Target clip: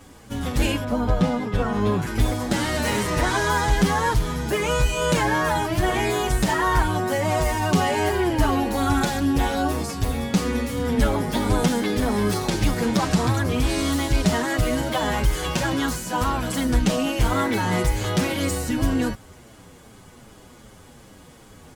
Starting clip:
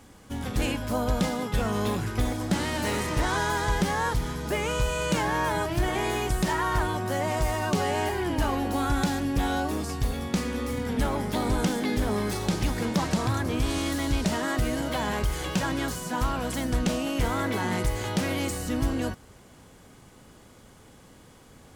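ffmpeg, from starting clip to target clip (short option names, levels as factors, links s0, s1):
-filter_complex "[0:a]asettb=1/sr,asplit=3[s0][s1][s2];[s0]atrim=end=0.844[s3];[s1]atrim=start=0.84:end=2.02,asetpts=PTS-STARTPTS,afade=t=in:d=0.004:c=qsin,afade=t=out:st=1.176:d=0.004:c=qsin,lowpass=f=1900:p=1[s4];[s2]atrim=start=2.016[s5];[s3][s4]acrossfade=d=0.004:c1=hsin:c2=qsin[s6];[s6][s5]acrossfade=d=0.004:c1=qsin:c2=hsin,asplit=2[s7][s8];[s8]adelay=7.4,afreqshift=-2.6[s9];[s7][s9]amix=inputs=2:normalize=1,volume=2.51"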